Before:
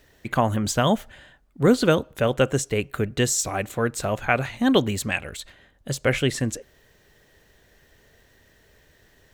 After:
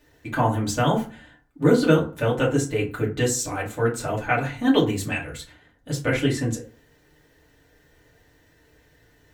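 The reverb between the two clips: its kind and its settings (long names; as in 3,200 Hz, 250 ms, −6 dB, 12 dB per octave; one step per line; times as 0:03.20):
feedback delay network reverb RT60 0.37 s, low-frequency decay 1.2×, high-frequency decay 0.55×, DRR −5 dB
level −7 dB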